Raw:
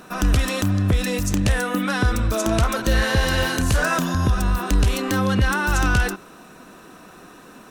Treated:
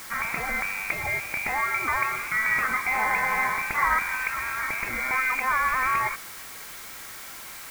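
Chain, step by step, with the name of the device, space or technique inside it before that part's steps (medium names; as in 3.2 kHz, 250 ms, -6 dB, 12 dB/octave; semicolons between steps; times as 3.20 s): scrambled radio voice (band-pass 370–3000 Hz; frequency inversion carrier 2.6 kHz; white noise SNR 14 dB)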